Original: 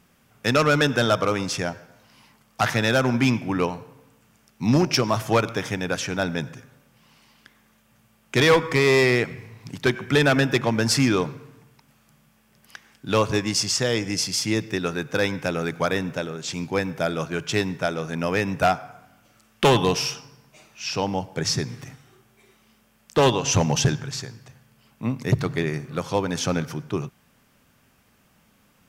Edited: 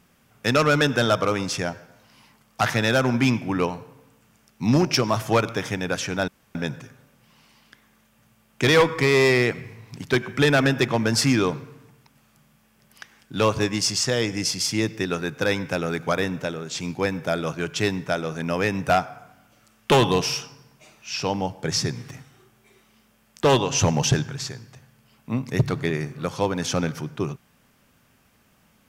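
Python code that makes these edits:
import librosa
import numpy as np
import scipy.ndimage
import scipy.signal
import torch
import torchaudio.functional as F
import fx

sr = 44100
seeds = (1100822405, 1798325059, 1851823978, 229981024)

y = fx.edit(x, sr, fx.insert_room_tone(at_s=6.28, length_s=0.27), tone=tone)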